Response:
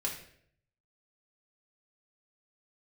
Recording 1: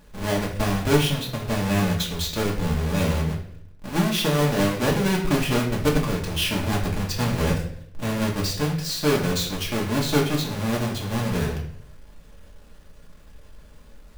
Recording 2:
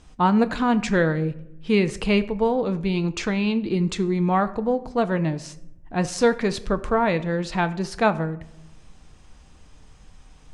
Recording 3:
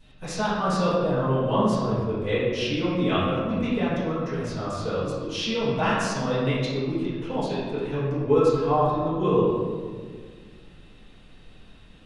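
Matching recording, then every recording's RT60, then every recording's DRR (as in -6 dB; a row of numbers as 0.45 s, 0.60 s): 1; 0.65 s, 0.85 s, 1.8 s; -2.5 dB, 10.5 dB, -14.5 dB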